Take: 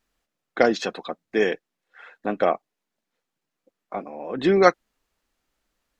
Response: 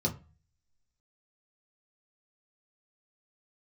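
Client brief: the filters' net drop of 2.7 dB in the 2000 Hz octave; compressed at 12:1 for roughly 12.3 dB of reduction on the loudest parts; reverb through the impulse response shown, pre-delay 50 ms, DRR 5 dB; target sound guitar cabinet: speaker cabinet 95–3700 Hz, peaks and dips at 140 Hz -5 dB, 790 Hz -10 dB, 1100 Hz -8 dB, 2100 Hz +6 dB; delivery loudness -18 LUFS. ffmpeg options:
-filter_complex "[0:a]equalizer=f=2k:t=o:g=-5.5,acompressor=threshold=-23dB:ratio=12,asplit=2[a][b];[1:a]atrim=start_sample=2205,adelay=50[c];[b][c]afir=irnorm=-1:irlink=0,volume=-11dB[d];[a][d]amix=inputs=2:normalize=0,highpass=95,equalizer=f=140:t=q:w=4:g=-5,equalizer=f=790:t=q:w=4:g=-10,equalizer=f=1.1k:t=q:w=4:g=-8,equalizer=f=2.1k:t=q:w=4:g=6,lowpass=f=3.7k:w=0.5412,lowpass=f=3.7k:w=1.3066,volume=11dB"

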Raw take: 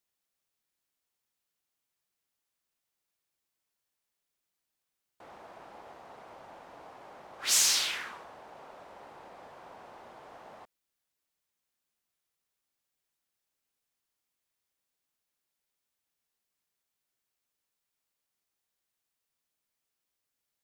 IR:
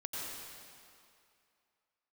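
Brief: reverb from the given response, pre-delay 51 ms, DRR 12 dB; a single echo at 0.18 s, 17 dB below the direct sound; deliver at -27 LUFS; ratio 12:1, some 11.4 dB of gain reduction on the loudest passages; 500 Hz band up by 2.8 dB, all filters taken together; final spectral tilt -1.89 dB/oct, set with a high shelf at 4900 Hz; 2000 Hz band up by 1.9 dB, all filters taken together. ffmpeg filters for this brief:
-filter_complex "[0:a]equalizer=f=500:t=o:g=3.5,equalizer=f=2k:t=o:g=3,highshelf=f=4.9k:g=-4,acompressor=threshold=-34dB:ratio=12,aecho=1:1:180:0.141,asplit=2[a][b];[1:a]atrim=start_sample=2205,adelay=51[c];[b][c]afir=irnorm=-1:irlink=0,volume=-14dB[d];[a][d]amix=inputs=2:normalize=0,volume=16dB"

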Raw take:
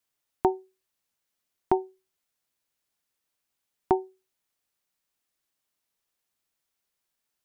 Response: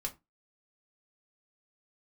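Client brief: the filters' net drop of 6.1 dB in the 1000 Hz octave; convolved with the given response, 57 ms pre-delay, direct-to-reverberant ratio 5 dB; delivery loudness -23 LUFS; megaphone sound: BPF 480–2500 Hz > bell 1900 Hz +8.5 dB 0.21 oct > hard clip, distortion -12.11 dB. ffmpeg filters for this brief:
-filter_complex "[0:a]equalizer=f=1k:t=o:g=-8,asplit=2[a][b];[1:a]atrim=start_sample=2205,adelay=57[c];[b][c]afir=irnorm=-1:irlink=0,volume=-5.5dB[d];[a][d]amix=inputs=2:normalize=0,highpass=480,lowpass=2.5k,equalizer=f=1.9k:t=o:w=0.21:g=8.5,asoftclip=type=hard:threshold=-24dB,volume=14dB"

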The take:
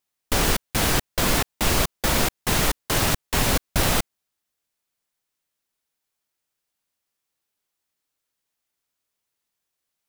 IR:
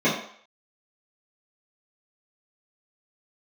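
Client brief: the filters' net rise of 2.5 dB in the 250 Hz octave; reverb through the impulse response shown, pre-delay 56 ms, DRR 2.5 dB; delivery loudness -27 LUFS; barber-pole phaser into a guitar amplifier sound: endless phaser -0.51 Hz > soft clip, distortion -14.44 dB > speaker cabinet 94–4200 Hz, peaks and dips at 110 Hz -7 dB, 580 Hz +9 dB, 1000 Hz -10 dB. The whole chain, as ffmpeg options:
-filter_complex "[0:a]equalizer=f=250:t=o:g=3.5,asplit=2[a][b];[1:a]atrim=start_sample=2205,adelay=56[c];[b][c]afir=irnorm=-1:irlink=0,volume=-20dB[d];[a][d]amix=inputs=2:normalize=0,asplit=2[e][f];[f]afreqshift=-0.51[g];[e][g]amix=inputs=2:normalize=1,asoftclip=threshold=-17dB,highpass=94,equalizer=f=110:t=q:w=4:g=-7,equalizer=f=580:t=q:w=4:g=9,equalizer=f=1k:t=q:w=4:g=-10,lowpass=f=4.2k:w=0.5412,lowpass=f=4.2k:w=1.3066,volume=-1.5dB"

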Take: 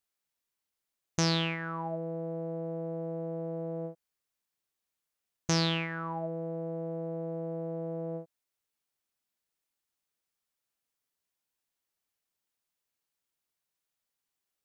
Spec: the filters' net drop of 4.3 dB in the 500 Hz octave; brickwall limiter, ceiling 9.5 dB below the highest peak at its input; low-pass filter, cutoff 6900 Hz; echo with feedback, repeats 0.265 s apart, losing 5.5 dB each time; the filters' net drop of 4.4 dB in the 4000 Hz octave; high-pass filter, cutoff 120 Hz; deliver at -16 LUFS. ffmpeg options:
-af "highpass=120,lowpass=6.9k,equalizer=f=500:t=o:g=-5,equalizer=f=4k:t=o:g=-5,alimiter=limit=-23.5dB:level=0:latency=1,aecho=1:1:265|530|795|1060|1325|1590|1855:0.531|0.281|0.149|0.079|0.0419|0.0222|0.0118,volume=22.5dB"

